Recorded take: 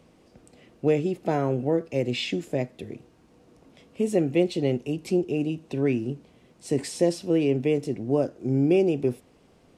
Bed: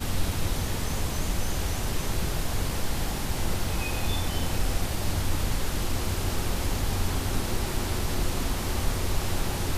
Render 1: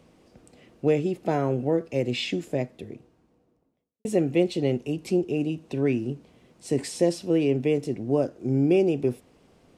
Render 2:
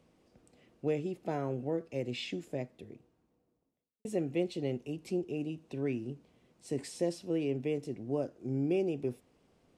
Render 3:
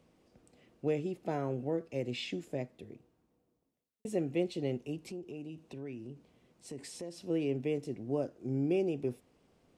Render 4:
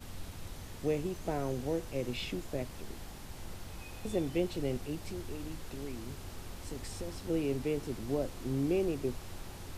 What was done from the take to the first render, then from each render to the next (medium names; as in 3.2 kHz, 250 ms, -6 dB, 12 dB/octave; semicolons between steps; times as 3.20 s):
2.44–4.05 s: studio fade out
trim -10 dB
5.11–7.18 s: compression 2.5:1, threshold -43 dBFS
add bed -17 dB